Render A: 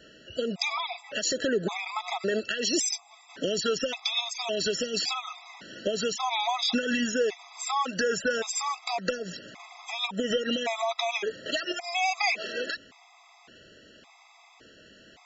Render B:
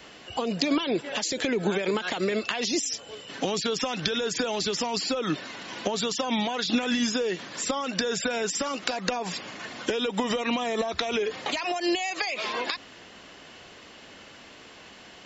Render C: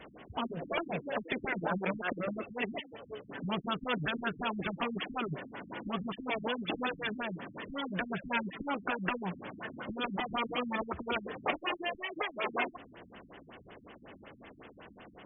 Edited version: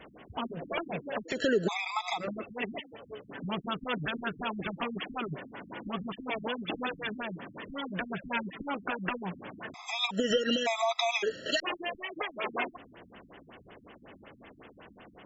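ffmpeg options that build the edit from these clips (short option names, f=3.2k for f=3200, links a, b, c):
-filter_complex "[0:a]asplit=2[a][b];[2:a]asplit=3[c][d][e];[c]atrim=end=1.44[f];[a]atrim=start=1.28:end=2.28[g];[d]atrim=start=2.12:end=9.742[h];[b]atrim=start=9.738:end=11.602[i];[e]atrim=start=11.598[j];[f][g]acrossfade=d=0.16:c1=tri:c2=tri[k];[k][h]acrossfade=d=0.16:c1=tri:c2=tri[l];[l][i]acrossfade=d=0.004:c1=hsin:c2=hsin[m];[m][j]acrossfade=d=0.004:c1=hsin:c2=hsin"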